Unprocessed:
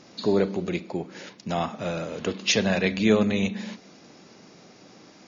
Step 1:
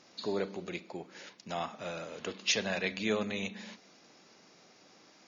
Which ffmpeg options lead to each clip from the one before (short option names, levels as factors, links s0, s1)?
-af "lowshelf=f=400:g=-10.5,volume=0.501"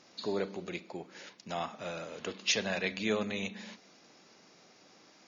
-af anull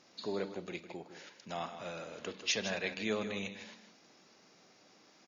-af "aecho=1:1:158:0.299,volume=0.668"